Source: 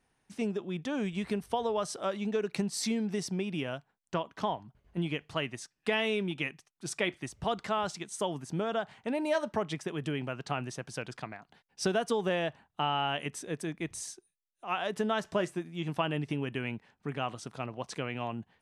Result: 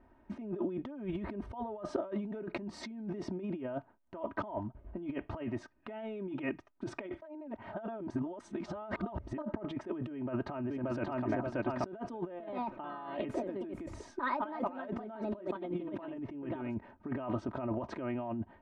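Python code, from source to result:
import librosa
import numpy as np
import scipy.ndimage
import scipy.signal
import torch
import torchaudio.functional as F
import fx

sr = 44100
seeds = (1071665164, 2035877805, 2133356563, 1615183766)

y = fx.echo_throw(x, sr, start_s=10.12, length_s=1.16, ms=580, feedback_pct=25, wet_db=-3.5)
y = fx.echo_pitch(y, sr, ms=127, semitones=3, count=2, db_per_echo=-3.0, at=(12.27, 17.44))
y = fx.edit(y, sr, fx.reverse_span(start_s=7.22, length_s=2.16), tone=tone)
y = scipy.signal.sosfilt(scipy.signal.butter(2, 1000.0, 'lowpass', fs=sr, output='sos'), y)
y = y + 0.84 * np.pad(y, (int(3.2 * sr / 1000.0), 0))[:len(y)]
y = fx.over_compress(y, sr, threshold_db=-42.0, ratio=-1.0)
y = y * librosa.db_to_amplitude(3.0)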